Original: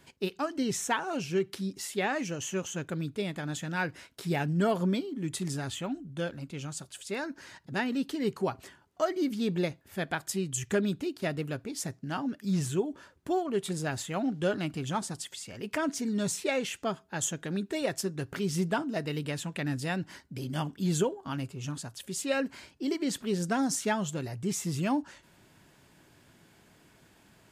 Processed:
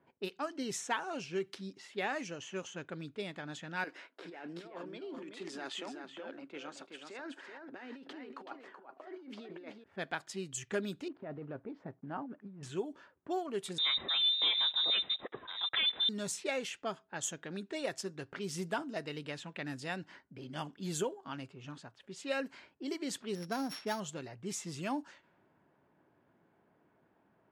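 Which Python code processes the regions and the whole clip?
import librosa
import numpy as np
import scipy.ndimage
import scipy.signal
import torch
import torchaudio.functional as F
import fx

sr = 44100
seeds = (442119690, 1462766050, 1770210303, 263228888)

y = fx.chain(x, sr, fx.highpass(hz=270.0, slope=24),
    fx.over_compress(threshold_db=-39.0, ratio=-1.0),
    fx.echo_single(ms=378, db=-6.0), at=(3.84, 9.84))
y = fx.chain(y, sr, fx.block_float(bits=5),
    fx.lowpass(hz=1100.0, slope=12),
    fx.over_compress(threshold_db=-34.0, ratio=-1.0), at=(11.08, 12.63))
y = fx.chain(y, sr, fx.peak_eq(hz=800.0, db=-11.5, octaves=2.2),
    fx.leveller(passes=3),
    fx.freq_invert(carrier_hz=3800), at=(13.78, 16.09))
y = fx.chain(y, sr, fx.sample_sort(block=8),
    fx.peak_eq(hz=10000.0, db=-9.5, octaves=2.5), at=(23.35, 24.0))
y = fx.env_lowpass(y, sr, base_hz=990.0, full_db=-26.0)
y = fx.highpass(y, sr, hz=350.0, slope=6)
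y = y * 10.0 ** (-4.5 / 20.0)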